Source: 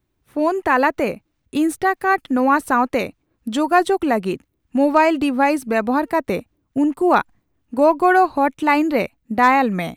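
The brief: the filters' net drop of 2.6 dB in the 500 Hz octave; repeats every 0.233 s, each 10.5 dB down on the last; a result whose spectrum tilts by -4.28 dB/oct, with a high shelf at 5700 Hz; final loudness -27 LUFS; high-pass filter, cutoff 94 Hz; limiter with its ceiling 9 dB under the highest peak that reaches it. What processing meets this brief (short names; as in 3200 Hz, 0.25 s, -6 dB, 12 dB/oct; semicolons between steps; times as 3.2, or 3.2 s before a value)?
HPF 94 Hz; bell 500 Hz -3.5 dB; high shelf 5700 Hz -6.5 dB; limiter -13 dBFS; feedback echo 0.233 s, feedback 30%, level -10.5 dB; gain -4 dB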